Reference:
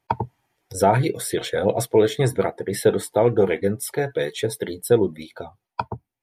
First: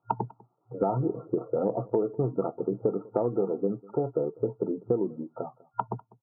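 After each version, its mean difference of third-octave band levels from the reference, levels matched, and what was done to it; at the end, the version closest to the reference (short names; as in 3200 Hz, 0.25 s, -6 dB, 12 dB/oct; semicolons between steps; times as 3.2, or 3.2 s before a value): 9.5 dB: FFT band-pass 110–1400 Hz; dynamic EQ 280 Hz, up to +6 dB, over -36 dBFS, Q 2; compressor 5:1, threshold -24 dBFS, peak gain reduction 13.5 dB; on a send: echo 0.198 s -23.5 dB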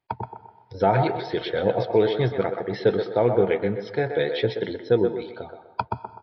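6.5 dB: AGC; narrowing echo 0.126 s, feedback 40%, band-pass 860 Hz, level -5 dB; plate-style reverb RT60 1.2 s, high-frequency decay 0.8×, pre-delay 0.11 s, DRR 17 dB; downsampling 11025 Hz; gain -7.5 dB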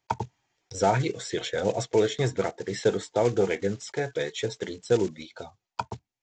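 4.5 dB: block floating point 5-bit; dynamic EQ 4600 Hz, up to -5 dB, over -46 dBFS, Q 1.6; downsampling 16000 Hz; high shelf 3000 Hz +10 dB; gain -6 dB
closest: third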